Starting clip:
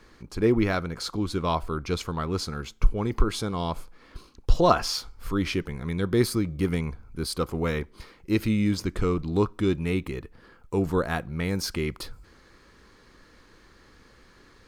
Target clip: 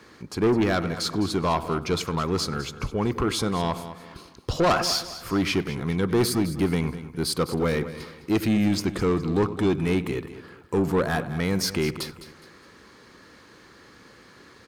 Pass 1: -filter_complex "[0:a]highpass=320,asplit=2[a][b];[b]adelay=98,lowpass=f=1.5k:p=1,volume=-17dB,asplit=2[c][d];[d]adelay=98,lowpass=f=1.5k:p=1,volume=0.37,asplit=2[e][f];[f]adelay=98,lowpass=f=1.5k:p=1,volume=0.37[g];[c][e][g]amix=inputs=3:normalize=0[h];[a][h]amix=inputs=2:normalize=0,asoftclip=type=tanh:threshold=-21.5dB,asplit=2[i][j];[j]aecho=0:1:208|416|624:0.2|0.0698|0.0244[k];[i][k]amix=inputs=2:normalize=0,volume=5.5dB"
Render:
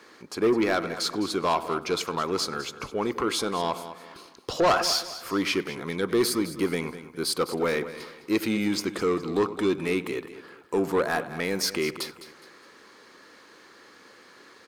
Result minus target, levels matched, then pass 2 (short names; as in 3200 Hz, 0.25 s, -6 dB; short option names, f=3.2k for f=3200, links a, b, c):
125 Hz band -9.5 dB
-filter_complex "[0:a]highpass=110,asplit=2[a][b];[b]adelay=98,lowpass=f=1.5k:p=1,volume=-17dB,asplit=2[c][d];[d]adelay=98,lowpass=f=1.5k:p=1,volume=0.37,asplit=2[e][f];[f]adelay=98,lowpass=f=1.5k:p=1,volume=0.37[g];[c][e][g]amix=inputs=3:normalize=0[h];[a][h]amix=inputs=2:normalize=0,asoftclip=type=tanh:threshold=-21.5dB,asplit=2[i][j];[j]aecho=0:1:208|416|624:0.2|0.0698|0.0244[k];[i][k]amix=inputs=2:normalize=0,volume=5.5dB"